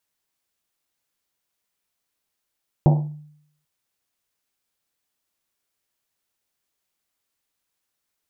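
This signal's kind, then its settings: Risset drum length 0.79 s, pitch 150 Hz, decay 0.71 s, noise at 670 Hz, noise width 440 Hz, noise 15%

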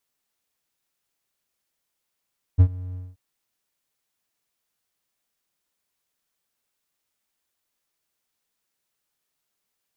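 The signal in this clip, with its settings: ADSR triangle 91.3 Hz, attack 26 ms, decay 70 ms, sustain -22 dB, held 0.37 s, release 211 ms -6 dBFS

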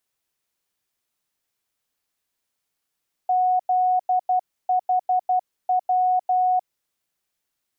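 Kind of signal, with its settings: Morse "ZHW" 12 wpm 735 Hz -16.5 dBFS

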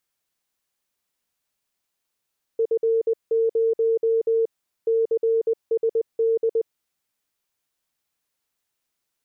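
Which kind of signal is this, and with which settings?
Morse "F0 CSD" 20 wpm 453 Hz -17 dBFS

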